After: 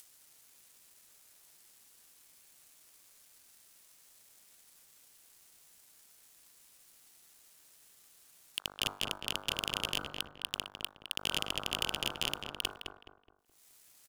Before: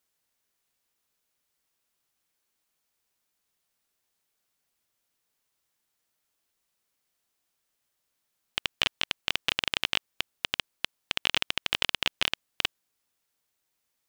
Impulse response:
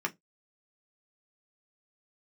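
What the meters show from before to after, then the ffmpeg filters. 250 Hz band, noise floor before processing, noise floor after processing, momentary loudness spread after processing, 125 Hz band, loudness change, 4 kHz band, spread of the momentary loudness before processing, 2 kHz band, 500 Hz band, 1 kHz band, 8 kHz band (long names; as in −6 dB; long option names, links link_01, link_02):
−1.0 dB, −80 dBFS, −63 dBFS, 8 LU, 0.0 dB, −6.5 dB, −6.0 dB, 7 LU, −9.5 dB, −2.0 dB, −4.5 dB, +0.5 dB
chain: -filter_complex "[0:a]agate=range=-13dB:threshold=-42dB:ratio=16:detection=peak,equalizer=frequency=9500:width_type=o:width=1.8:gain=10.5,bandreject=frequency=49.47:width_type=h:width=4,bandreject=frequency=98.94:width_type=h:width=4,bandreject=frequency=148.41:width_type=h:width=4,bandreject=frequency=197.88:width_type=h:width=4,bandreject=frequency=247.35:width_type=h:width=4,bandreject=frequency=296.82:width_type=h:width=4,bandreject=frequency=346.29:width_type=h:width=4,bandreject=frequency=395.76:width_type=h:width=4,bandreject=frequency=445.23:width_type=h:width=4,bandreject=frequency=494.7:width_type=h:width=4,bandreject=frequency=544.17:width_type=h:width=4,bandreject=frequency=593.64:width_type=h:width=4,bandreject=frequency=643.11:width_type=h:width=4,bandreject=frequency=692.58:width_type=h:width=4,bandreject=frequency=742.05:width_type=h:width=4,bandreject=frequency=791.52:width_type=h:width=4,bandreject=frequency=840.99:width_type=h:width=4,bandreject=frequency=890.46:width_type=h:width=4,bandreject=frequency=939.93:width_type=h:width=4,bandreject=frequency=989.4:width_type=h:width=4,bandreject=frequency=1038.87:width_type=h:width=4,bandreject=frequency=1088.34:width_type=h:width=4,bandreject=frequency=1137.81:width_type=h:width=4,bandreject=frequency=1187.28:width_type=h:width=4,bandreject=frequency=1236.75:width_type=h:width=4,bandreject=frequency=1286.22:width_type=h:width=4,bandreject=frequency=1335.69:width_type=h:width=4,bandreject=frequency=1385.16:width_type=h:width=4,bandreject=frequency=1434.63:width_type=h:width=4,bandreject=frequency=1484.1:width_type=h:width=4,bandreject=frequency=1533.57:width_type=h:width=4,acrossover=split=400|1300[link_01][link_02][link_03];[link_03]acompressor=mode=upward:threshold=-42dB:ratio=2.5[link_04];[link_01][link_02][link_04]amix=inputs=3:normalize=0,alimiter=limit=-10.5dB:level=0:latency=1:release=12,asplit=2[link_05][link_06];[link_06]acompressor=threshold=-40dB:ratio=6,volume=-2.5dB[link_07];[link_05][link_07]amix=inputs=2:normalize=0,asoftclip=type=tanh:threshold=-23dB,acrusher=bits=11:mix=0:aa=0.000001,aeval=exprs='sgn(val(0))*max(abs(val(0))-0.00133,0)':channel_layout=same,asplit=2[link_08][link_09];[link_09]adelay=211,lowpass=frequency=1700:poles=1,volume=-3.5dB,asplit=2[link_10][link_11];[link_11]adelay=211,lowpass=frequency=1700:poles=1,volume=0.39,asplit=2[link_12][link_13];[link_13]adelay=211,lowpass=frequency=1700:poles=1,volume=0.39,asplit=2[link_14][link_15];[link_15]adelay=211,lowpass=frequency=1700:poles=1,volume=0.39,asplit=2[link_16][link_17];[link_17]adelay=211,lowpass=frequency=1700:poles=1,volume=0.39[link_18];[link_08][link_10][link_12][link_14][link_16][link_18]amix=inputs=6:normalize=0,volume=3.5dB"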